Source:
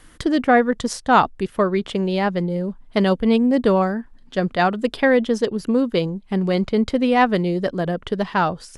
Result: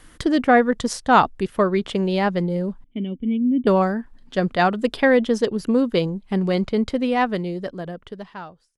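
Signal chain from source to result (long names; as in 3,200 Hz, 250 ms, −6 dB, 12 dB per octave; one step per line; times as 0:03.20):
fade-out on the ending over 2.53 s
0:02.84–0:03.67: formant resonators in series i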